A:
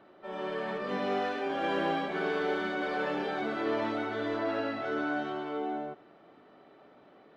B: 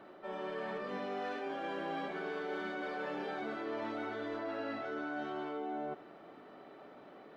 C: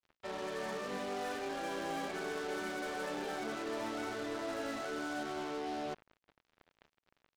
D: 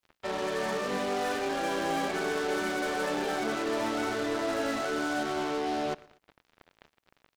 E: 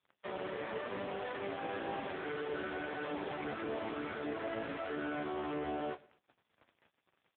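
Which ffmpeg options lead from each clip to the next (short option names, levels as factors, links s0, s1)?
-af "equalizer=f=73:w=0.75:g=-5,areverse,acompressor=threshold=0.00891:ratio=5,areverse,equalizer=f=3400:w=1.5:g=-2,volume=1.5"
-af "acrusher=bits=6:mix=0:aa=0.5"
-af "aecho=1:1:120|240:0.0668|0.0241,volume=2.66"
-filter_complex "[0:a]aeval=exprs='(tanh(35.5*val(0)+0.7)-tanh(0.7))/35.5':c=same,asplit=2[s0][s1];[s1]adelay=30,volume=0.2[s2];[s0][s2]amix=inputs=2:normalize=0,volume=0.891" -ar 8000 -c:a libopencore_amrnb -b:a 5150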